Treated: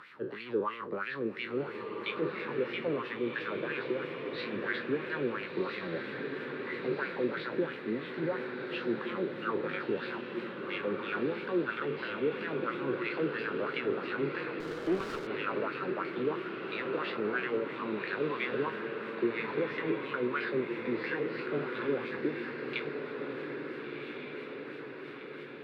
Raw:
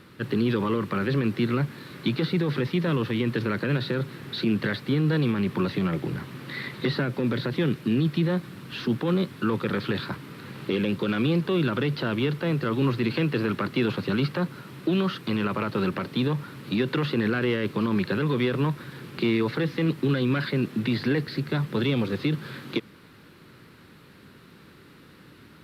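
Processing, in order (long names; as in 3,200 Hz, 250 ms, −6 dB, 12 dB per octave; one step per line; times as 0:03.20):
peak hold with a decay on every bin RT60 0.49 s
upward compression, threshold −34 dBFS
LFO wah 3 Hz 390–2,400 Hz, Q 3.3
on a send: feedback delay with all-pass diffusion 1,411 ms, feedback 59%, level −5 dB
0:14.60–0:15.27: on the sum: windowed peak hold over 9 samples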